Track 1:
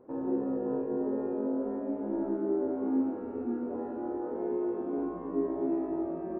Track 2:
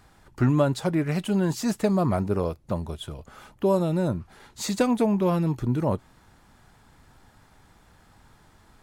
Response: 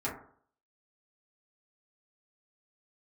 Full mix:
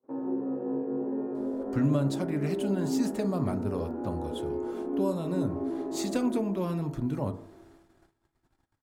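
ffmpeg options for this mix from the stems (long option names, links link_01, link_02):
-filter_complex "[0:a]highpass=120,volume=-1.5dB,asplit=3[link_01][link_02][link_03];[link_02]volume=-13.5dB[link_04];[link_03]volume=-7dB[link_05];[1:a]adelay=1350,volume=-7dB,asplit=2[link_06][link_07];[link_07]volume=-11dB[link_08];[2:a]atrim=start_sample=2205[link_09];[link_04][link_08]amix=inputs=2:normalize=0[link_10];[link_10][link_09]afir=irnorm=-1:irlink=0[link_11];[link_05]aecho=0:1:417|834|1251|1668|2085|2502|2919:1|0.49|0.24|0.118|0.0576|0.0282|0.0138[link_12];[link_01][link_06][link_11][link_12]amix=inputs=4:normalize=0,agate=range=-27dB:threshold=-55dB:ratio=16:detection=peak,acrossover=split=260|3000[link_13][link_14][link_15];[link_14]acompressor=threshold=-37dB:ratio=1.5[link_16];[link_13][link_16][link_15]amix=inputs=3:normalize=0"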